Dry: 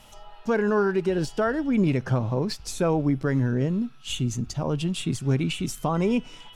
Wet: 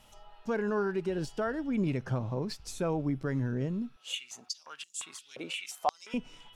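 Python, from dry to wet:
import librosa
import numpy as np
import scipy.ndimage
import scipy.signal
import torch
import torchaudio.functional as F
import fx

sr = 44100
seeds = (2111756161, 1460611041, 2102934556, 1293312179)

y = fx.filter_held_highpass(x, sr, hz=5.7, low_hz=510.0, high_hz=7100.0, at=(3.96, 6.14))
y = y * 10.0 ** (-8.0 / 20.0)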